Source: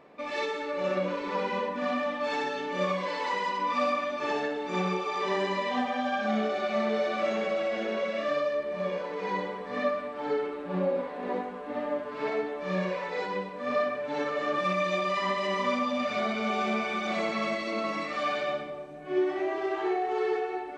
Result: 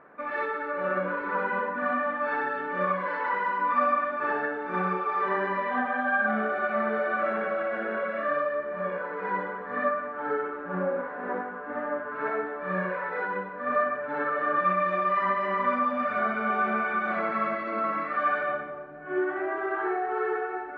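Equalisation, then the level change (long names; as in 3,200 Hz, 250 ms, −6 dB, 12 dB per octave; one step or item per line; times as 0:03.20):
low-pass with resonance 1,500 Hz, resonance Q 5.9
−2.0 dB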